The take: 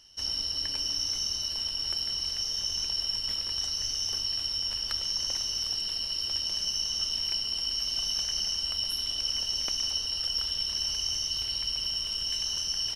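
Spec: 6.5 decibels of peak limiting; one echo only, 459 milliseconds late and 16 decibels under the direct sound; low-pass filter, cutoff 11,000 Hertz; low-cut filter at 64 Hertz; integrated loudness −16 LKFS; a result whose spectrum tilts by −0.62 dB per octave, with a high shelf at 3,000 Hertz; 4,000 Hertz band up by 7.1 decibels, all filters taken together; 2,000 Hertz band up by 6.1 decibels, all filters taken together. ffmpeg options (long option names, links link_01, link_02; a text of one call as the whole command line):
ffmpeg -i in.wav -af "highpass=64,lowpass=11000,equalizer=frequency=2000:width_type=o:gain=4,highshelf=frequency=3000:gain=6,equalizer=frequency=4000:width_type=o:gain=4,alimiter=limit=-16dB:level=0:latency=1,aecho=1:1:459:0.158,volume=6dB" out.wav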